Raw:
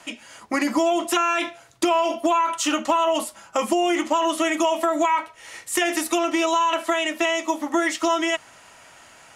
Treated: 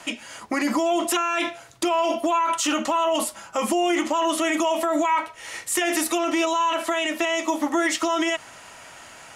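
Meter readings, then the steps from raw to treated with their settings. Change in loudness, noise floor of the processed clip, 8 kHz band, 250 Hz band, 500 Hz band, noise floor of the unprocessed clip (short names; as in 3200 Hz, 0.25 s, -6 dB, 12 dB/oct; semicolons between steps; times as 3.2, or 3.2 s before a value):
-1.0 dB, -45 dBFS, +1.5 dB, -0.5 dB, -1.5 dB, -50 dBFS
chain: limiter -18.5 dBFS, peak gain reduction 9 dB; gain +4.5 dB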